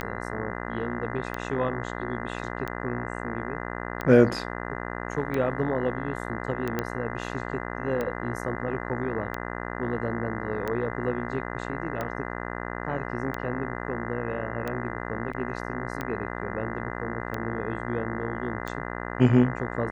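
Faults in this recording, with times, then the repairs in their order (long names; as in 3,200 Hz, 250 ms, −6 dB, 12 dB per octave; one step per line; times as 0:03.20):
mains buzz 60 Hz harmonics 34 −34 dBFS
scratch tick 45 rpm −17 dBFS
0:06.79: click −13 dBFS
0:15.33: drop-out 4.5 ms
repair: click removal
hum removal 60 Hz, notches 34
repair the gap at 0:15.33, 4.5 ms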